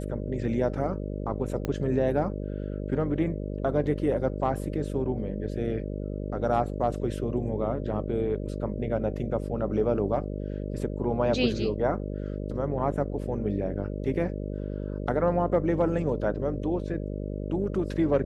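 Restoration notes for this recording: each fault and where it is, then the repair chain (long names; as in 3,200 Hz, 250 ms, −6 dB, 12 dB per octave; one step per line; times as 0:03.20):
mains buzz 50 Hz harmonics 12 −33 dBFS
0:01.65: click −16 dBFS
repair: click removal
hum removal 50 Hz, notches 12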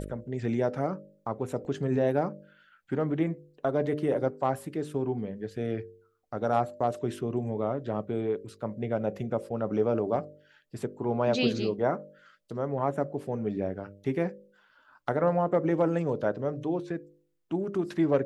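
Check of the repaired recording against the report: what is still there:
0:01.65: click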